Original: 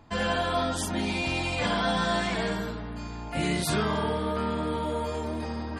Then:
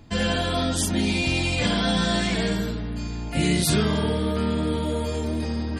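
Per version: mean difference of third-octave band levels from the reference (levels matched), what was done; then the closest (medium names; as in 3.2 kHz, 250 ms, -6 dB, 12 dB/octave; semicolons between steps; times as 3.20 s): 2.5 dB: peaking EQ 1 kHz -11.5 dB 1.8 oct; trim +8 dB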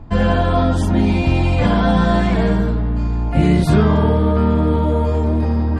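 6.5 dB: tilt EQ -3.5 dB/octave; trim +7 dB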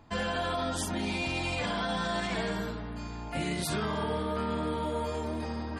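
1.0 dB: peak limiter -20.5 dBFS, peak gain reduction 7 dB; trim -2 dB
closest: third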